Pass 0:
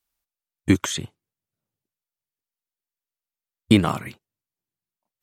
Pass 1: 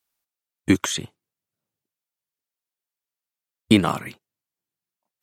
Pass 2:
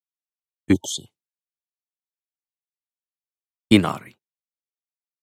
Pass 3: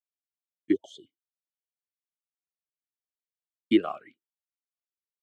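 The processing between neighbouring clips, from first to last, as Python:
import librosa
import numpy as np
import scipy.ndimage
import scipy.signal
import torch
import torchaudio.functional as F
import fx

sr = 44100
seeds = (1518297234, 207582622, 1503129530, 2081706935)

y1 = fx.highpass(x, sr, hz=160.0, slope=6)
y1 = y1 * librosa.db_to_amplitude(1.5)
y2 = fx.spec_erase(y1, sr, start_s=0.73, length_s=0.33, low_hz=920.0, high_hz=2900.0)
y2 = fx.band_widen(y2, sr, depth_pct=100)
y2 = y2 * librosa.db_to_amplitude(-6.0)
y3 = fx.vowel_sweep(y2, sr, vowels='a-i', hz=2.3)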